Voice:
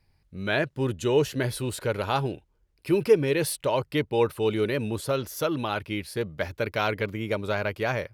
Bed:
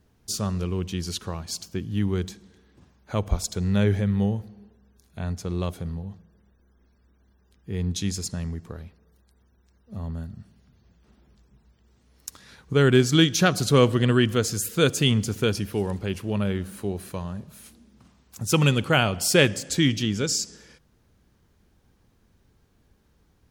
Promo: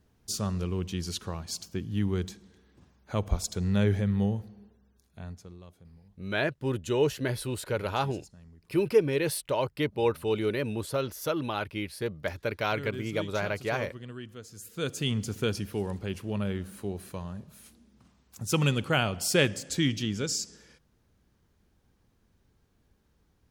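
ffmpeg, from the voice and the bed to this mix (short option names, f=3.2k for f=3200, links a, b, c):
-filter_complex "[0:a]adelay=5850,volume=-3dB[a];[1:a]volume=13dB,afade=t=out:st=4.6:d=0.99:silence=0.11885,afade=t=in:st=14.5:d=0.88:silence=0.149624[b];[a][b]amix=inputs=2:normalize=0"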